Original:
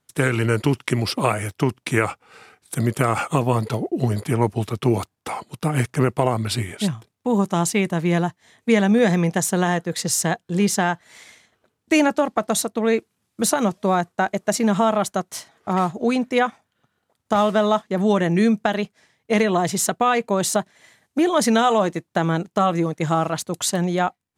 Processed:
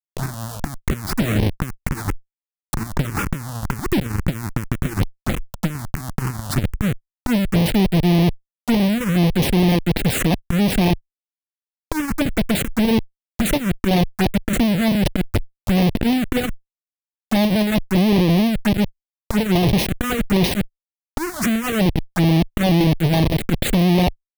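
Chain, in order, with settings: bell 230 Hz +7 dB 1.2 oct; Schmitt trigger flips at -23 dBFS; added harmonics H 6 -17 dB, 8 -7 dB, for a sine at -11.5 dBFS; envelope phaser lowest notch 200 Hz, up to 1400 Hz, full sweep at -13 dBFS

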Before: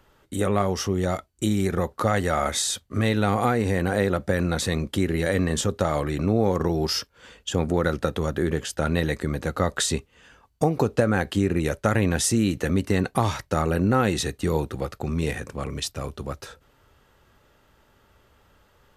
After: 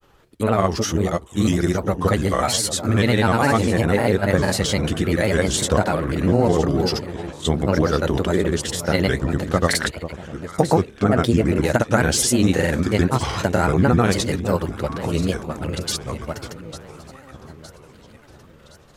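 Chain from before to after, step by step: echo with dull and thin repeats by turns 0.467 s, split 1000 Hz, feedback 70%, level -11 dB; grains, pitch spread up and down by 3 st; gain +5.5 dB

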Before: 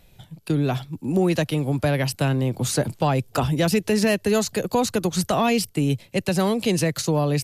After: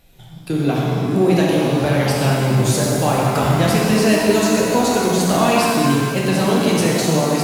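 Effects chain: notches 50/100/150/200 Hz; shimmer reverb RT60 2.2 s, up +7 st, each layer -8 dB, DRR -4.5 dB

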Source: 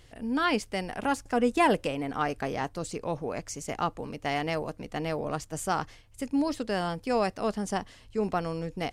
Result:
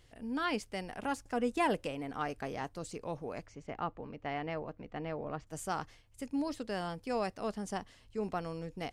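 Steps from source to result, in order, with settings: 3.46–5.47 LPF 2500 Hz 12 dB/oct; gain -7.5 dB

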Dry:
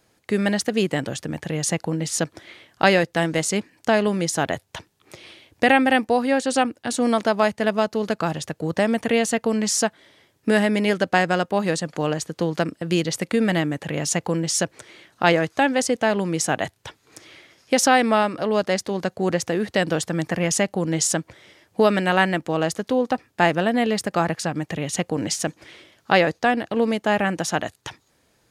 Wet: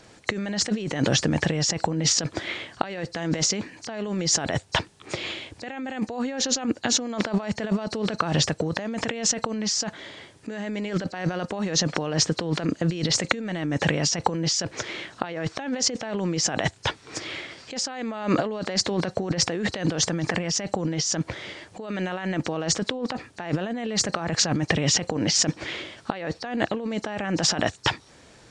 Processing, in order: nonlinear frequency compression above 3900 Hz 1.5:1; negative-ratio compressor -31 dBFS, ratio -1; gain +4 dB

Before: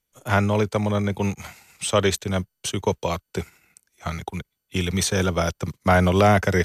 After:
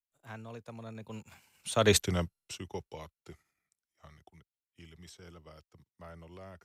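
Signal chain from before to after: Doppler pass-by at 1.98, 30 m/s, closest 2.8 m

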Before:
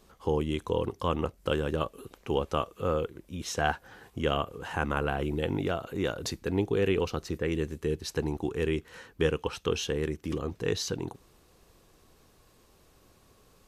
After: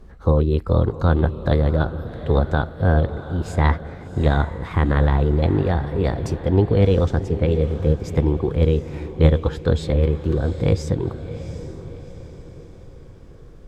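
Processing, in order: formant shift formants +4 st; RIAA curve playback; diffused feedback echo 0.738 s, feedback 46%, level -12 dB; gain +4.5 dB

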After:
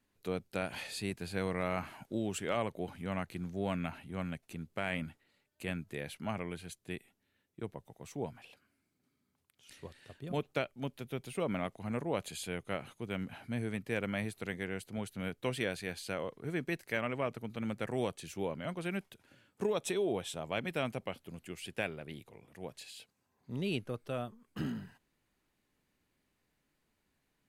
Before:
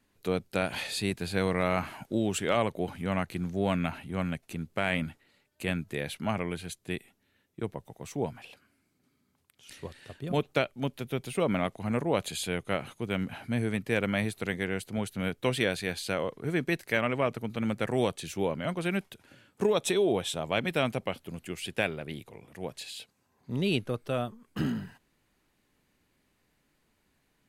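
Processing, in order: dynamic EQ 3700 Hz, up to -4 dB, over -50 dBFS, Q 4.9; gain -7 dB

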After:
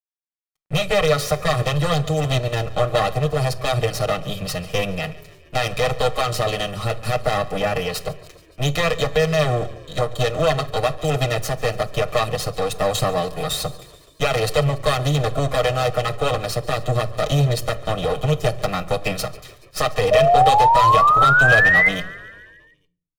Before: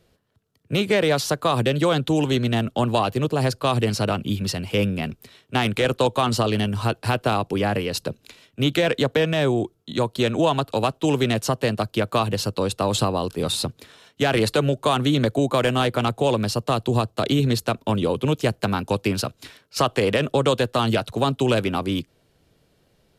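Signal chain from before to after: minimum comb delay 6.4 ms; comb 1.6 ms, depth 80%; crossover distortion -49.5 dBFS; painted sound rise, 20.11–21.89, 610–2100 Hz -14 dBFS; frequency-shifting echo 0.142 s, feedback 65%, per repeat -30 Hz, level -20.5 dB; shoebox room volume 630 m³, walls furnished, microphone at 0.41 m

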